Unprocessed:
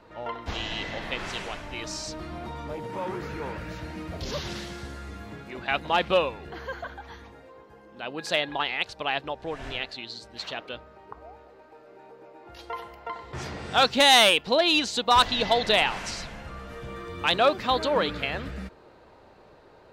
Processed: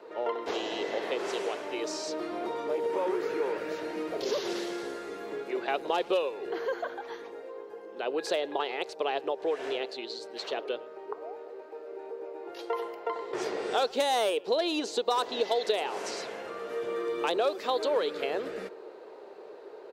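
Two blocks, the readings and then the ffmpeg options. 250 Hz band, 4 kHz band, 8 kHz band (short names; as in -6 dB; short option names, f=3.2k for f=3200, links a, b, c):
-2.5 dB, -11.0 dB, -7.0 dB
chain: -filter_complex "[0:a]highpass=f=410:t=q:w=4.5,acrossover=split=1200|4600[a][b][c];[a]acompressor=threshold=-27dB:ratio=4[d];[b]acompressor=threshold=-41dB:ratio=4[e];[c]acompressor=threshold=-41dB:ratio=4[f];[d][e][f]amix=inputs=3:normalize=0,asplit=2[g][h];[h]adelay=110,highpass=300,lowpass=3.4k,asoftclip=type=hard:threshold=-23.5dB,volume=-22dB[i];[g][i]amix=inputs=2:normalize=0"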